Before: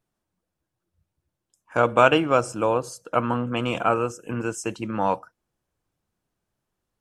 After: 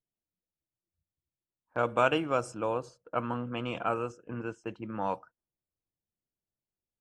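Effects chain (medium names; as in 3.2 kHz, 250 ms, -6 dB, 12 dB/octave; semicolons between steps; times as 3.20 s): level-controlled noise filter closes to 710 Hz, open at -17 dBFS; gate -42 dBFS, range -7 dB; trim -9 dB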